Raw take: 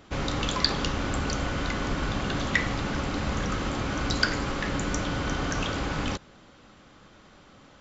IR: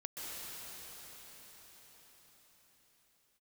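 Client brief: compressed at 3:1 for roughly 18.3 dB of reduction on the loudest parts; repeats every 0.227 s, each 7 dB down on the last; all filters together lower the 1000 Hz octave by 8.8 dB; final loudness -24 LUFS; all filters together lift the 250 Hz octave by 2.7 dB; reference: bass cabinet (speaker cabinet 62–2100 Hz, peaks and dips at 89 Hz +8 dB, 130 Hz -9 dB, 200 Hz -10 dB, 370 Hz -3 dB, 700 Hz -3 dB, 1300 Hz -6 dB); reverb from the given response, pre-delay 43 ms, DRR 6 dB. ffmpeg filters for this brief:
-filter_complex "[0:a]equalizer=f=250:t=o:g=8,equalizer=f=1k:t=o:g=-8,acompressor=threshold=-46dB:ratio=3,aecho=1:1:227|454|681|908|1135:0.447|0.201|0.0905|0.0407|0.0183,asplit=2[a][b];[1:a]atrim=start_sample=2205,adelay=43[c];[b][c]afir=irnorm=-1:irlink=0,volume=-7dB[d];[a][d]amix=inputs=2:normalize=0,highpass=f=62:w=0.5412,highpass=f=62:w=1.3066,equalizer=f=89:t=q:w=4:g=8,equalizer=f=130:t=q:w=4:g=-9,equalizer=f=200:t=q:w=4:g=-10,equalizer=f=370:t=q:w=4:g=-3,equalizer=f=700:t=q:w=4:g=-3,equalizer=f=1.3k:t=q:w=4:g=-6,lowpass=f=2.1k:w=0.5412,lowpass=f=2.1k:w=1.3066,volume=22dB"

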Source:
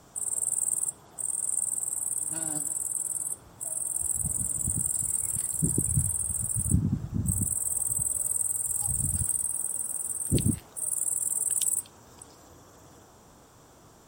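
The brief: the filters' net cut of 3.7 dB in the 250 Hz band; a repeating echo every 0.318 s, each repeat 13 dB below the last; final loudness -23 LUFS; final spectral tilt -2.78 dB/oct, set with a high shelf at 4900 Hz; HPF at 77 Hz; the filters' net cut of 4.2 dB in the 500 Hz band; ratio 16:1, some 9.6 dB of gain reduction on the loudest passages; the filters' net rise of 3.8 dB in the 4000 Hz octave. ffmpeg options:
-af "highpass=77,equalizer=f=250:t=o:g=-4.5,equalizer=f=500:t=o:g=-4,equalizer=f=4k:t=o:g=7.5,highshelf=f=4.9k:g=-6,acompressor=threshold=-32dB:ratio=16,aecho=1:1:318|636|954:0.224|0.0493|0.0108,volume=12dB"

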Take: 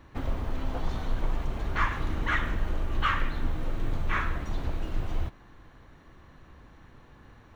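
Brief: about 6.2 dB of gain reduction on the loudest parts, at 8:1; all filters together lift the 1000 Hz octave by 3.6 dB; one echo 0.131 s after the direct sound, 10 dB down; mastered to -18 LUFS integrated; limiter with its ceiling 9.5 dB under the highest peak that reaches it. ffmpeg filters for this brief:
-af "equalizer=f=1k:t=o:g=4.5,acompressor=threshold=-27dB:ratio=8,alimiter=level_in=4dB:limit=-24dB:level=0:latency=1,volume=-4dB,aecho=1:1:131:0.316,volume=21.5dB"

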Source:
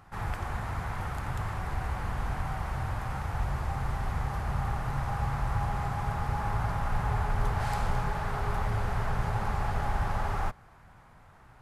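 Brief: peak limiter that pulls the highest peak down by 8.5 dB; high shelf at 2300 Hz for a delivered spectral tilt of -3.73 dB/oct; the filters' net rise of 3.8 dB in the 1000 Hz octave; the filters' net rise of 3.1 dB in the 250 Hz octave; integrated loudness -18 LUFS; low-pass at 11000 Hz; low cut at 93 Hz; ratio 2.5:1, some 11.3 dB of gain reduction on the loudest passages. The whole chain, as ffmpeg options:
-af "highpass=93,lowpass=11k,equalizer=f=250:t=o:g=5.5,equalizer=f=1k:t=o:g=5.5,highshelf=f=2.3k:g=-6,acompressor=threshold=-44dB:ratio=2.5,volume=28dB,alimiter=limit=-9dB:level=0:latency=1"

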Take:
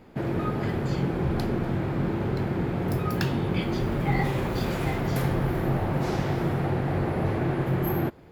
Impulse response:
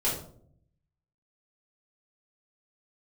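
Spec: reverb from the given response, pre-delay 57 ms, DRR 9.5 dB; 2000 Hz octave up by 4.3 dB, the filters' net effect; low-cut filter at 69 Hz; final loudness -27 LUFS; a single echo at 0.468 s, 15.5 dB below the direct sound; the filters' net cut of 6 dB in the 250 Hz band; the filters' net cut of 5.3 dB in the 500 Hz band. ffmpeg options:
-filter_complex "[0:a]highpass=69,equalizer=f=250:t=o:g=-8.5,equalizer=f=500:t=o:g=-4,equalizer=f=2k:t=o:g=5.5,aecho=1:1:468:0.168,asplit=2[a][b];[1:a]atrim=start_sample=2205,adelay=57[c];[b][c]afir=irnorm=-1:irlink=0,volume=-18.5dB[d];[a][d]amix=inputs=2:normalize=0,volume=2dB"

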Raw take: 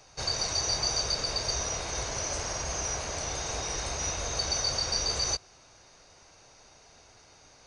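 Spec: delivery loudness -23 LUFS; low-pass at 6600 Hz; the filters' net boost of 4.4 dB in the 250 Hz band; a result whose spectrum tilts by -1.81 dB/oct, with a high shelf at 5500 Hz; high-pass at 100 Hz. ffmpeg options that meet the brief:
-af "highpass=100,lowpass=6.6k,equalizer=f=250:t=o:g=6.5,highshelf=f=5.5k:g=-3.5,volume=8.5dB"

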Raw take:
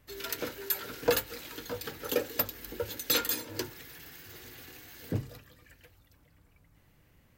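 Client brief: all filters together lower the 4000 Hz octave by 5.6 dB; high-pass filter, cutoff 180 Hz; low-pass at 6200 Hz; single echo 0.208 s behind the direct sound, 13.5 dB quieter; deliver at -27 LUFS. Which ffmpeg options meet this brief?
-af "highpass=180,lowpass=6.2k,equalizer=f=4k:t=o:g=-6,aecho=1:1:208:0.211,volume=9.5dB"

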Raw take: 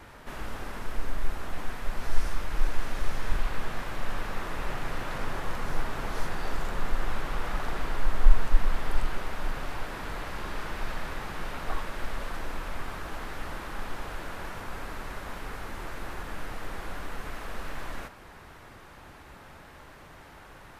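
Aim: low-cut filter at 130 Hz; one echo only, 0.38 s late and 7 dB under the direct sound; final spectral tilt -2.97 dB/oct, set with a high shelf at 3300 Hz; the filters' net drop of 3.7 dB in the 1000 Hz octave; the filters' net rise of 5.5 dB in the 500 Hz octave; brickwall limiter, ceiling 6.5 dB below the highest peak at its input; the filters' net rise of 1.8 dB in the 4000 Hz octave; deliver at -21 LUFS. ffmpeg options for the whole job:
-af "highpass=130,equalizer=f=500:t=o:g=9,equalizer=f=1k:t=o:g=-7.5,highshelf=f=3.3k:g=-7,equalizer=f=4k:t=o:g=7.5,alimiter=level_in=4.5dB:limit=-24dB:level=0:latency=1,volume=-4.5dB,aecho=1:1:380:0.447,volume=17dB"

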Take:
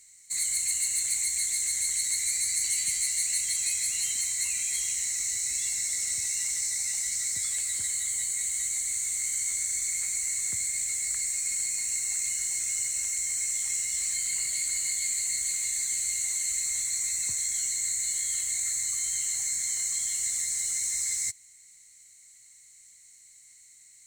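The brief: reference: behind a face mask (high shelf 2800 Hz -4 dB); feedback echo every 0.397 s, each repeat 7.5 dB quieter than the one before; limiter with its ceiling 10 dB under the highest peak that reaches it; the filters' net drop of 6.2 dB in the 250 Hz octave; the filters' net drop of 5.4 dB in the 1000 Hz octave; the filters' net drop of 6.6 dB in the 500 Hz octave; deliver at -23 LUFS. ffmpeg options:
-af "equalizer=f=250:t=o:g=-8,equalizer=f=500:t=o:g=-4.5,equalizer=f=1k:t=o:g=-5,alimiter=limit=-24dB:level=0:latency=1,highshelf=f=2.8k:g=-4,aecho=1:1:397|794|1191|1588|1985:0.422|0.177|0.0744|0.0312|0.0131,volume=10dB"

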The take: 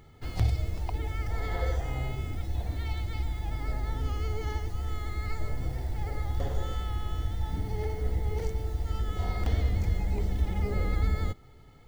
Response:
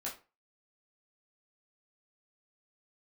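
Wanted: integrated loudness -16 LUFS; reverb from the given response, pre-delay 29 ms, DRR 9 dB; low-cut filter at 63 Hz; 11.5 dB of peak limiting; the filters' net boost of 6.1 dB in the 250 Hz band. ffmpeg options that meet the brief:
-filter_complex "[0:a]highpass=63,equalizer=f=250:t=o:g=8.5,alimiter=level_in=3dB:limit=-24dB:level=0:latency=1,volume=-3dB,asplit=2[a][b];[1:a]atrim=start_sample=2205,adelay=29[c];[b][c]afir=irnorm=-1:irlink=0,volume=-9.5dB[d];[a][d]amix=inputs=2:normalize=0,volume=20dB"

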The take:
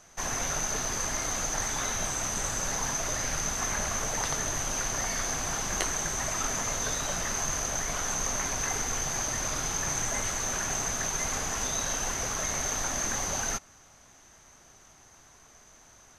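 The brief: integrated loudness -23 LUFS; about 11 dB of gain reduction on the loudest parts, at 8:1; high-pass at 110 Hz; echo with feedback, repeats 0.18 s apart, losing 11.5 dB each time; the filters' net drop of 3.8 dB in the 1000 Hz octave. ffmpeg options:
-af "highpass=110,equalizer=f=1k:t=o:g=-5,acompressor=threshold=-38dB:ratio=8,aecho=1:1:180|360|540:0.266|0.0718|0.0194,volume=15.5dB"

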